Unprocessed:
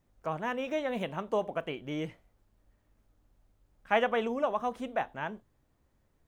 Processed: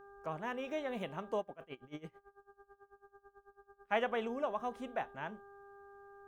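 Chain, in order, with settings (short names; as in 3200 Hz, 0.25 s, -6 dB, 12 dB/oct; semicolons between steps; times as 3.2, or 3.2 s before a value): buzz 400 Hz, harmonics 4, -50 dBFS -4 dB/oct; 1.4–3.93 dB-linear tremolo 9.1 Hz, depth 22 dB; gain -6.5 dB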